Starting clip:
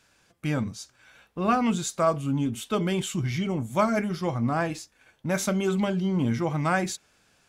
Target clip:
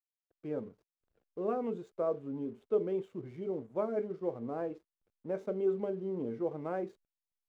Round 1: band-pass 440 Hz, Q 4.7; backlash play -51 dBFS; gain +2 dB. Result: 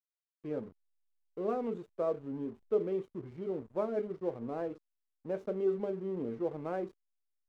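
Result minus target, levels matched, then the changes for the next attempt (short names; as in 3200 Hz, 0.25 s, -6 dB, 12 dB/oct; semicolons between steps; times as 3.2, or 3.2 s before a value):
backlash: distortion +10 dB
change: backlash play -61.5 dBFS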